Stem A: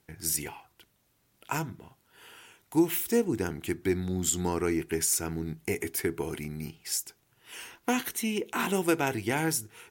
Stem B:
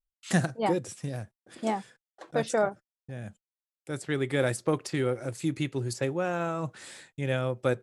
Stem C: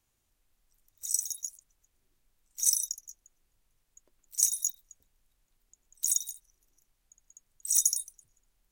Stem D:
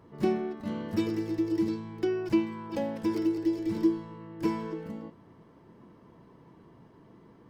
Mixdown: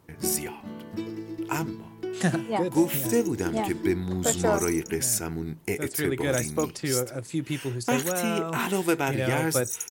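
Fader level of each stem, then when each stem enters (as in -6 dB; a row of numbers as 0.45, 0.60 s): +1.5, 0.0, -8.5, -5.0 dB; 0.00, 1.90, 1.95, 0.00 s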